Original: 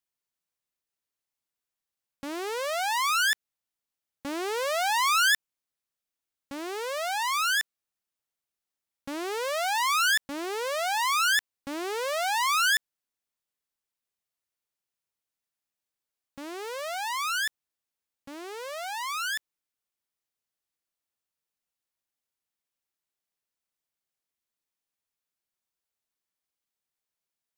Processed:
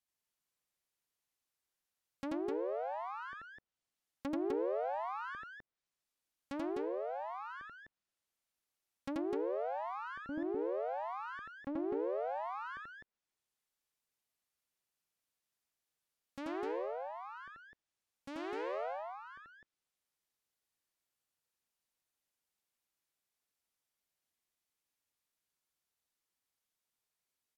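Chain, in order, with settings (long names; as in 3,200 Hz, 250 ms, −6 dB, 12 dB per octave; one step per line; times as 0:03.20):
treble cut that deepens with the level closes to 440 Hz, closed at −31.5 dBFS
loudspeakers that aren't time-aligned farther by 29 metres −1 dB, 87 metres −3 dB
level −3 dB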